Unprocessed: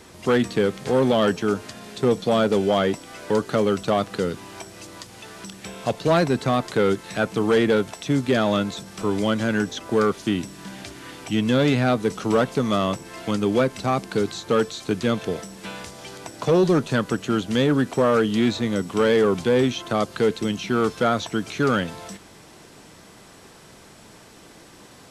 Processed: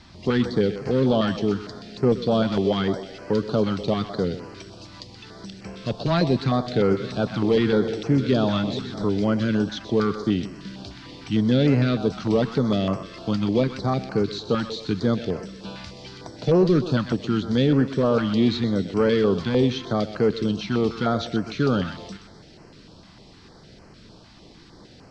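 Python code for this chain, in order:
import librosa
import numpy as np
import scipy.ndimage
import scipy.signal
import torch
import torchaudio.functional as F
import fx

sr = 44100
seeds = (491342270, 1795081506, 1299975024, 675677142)

y = fx.reverse_delay_fb(x, sr, ms=272, feedback_pct=59, wet_db=-12.0, at=(6.37, 9.04))
y = fx.lowpass_res(y, sr, hz=4600.0, q=3.1)
y = fx.tilt_eq(y, sr, slope=-2.0)
y = fx.echo_thinned(y, sr, ms=126, feedback_pct=51, hz=380.0, wet_db=-10.0)
y = fx.filter_held_notch(y, sr, hz=6.6, low_hz=440.0, high_hz=3600.0)
y = y * librosa.db_to_amplitude(-3.0)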